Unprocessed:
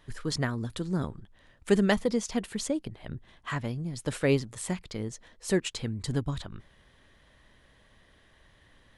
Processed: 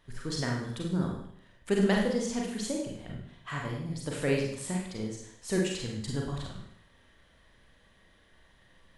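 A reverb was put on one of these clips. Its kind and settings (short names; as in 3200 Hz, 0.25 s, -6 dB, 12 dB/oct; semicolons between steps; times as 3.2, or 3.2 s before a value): Schroeder reverb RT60 0.68 s, combs from 33 ms, DRR -1.5 dB; gain -5 dB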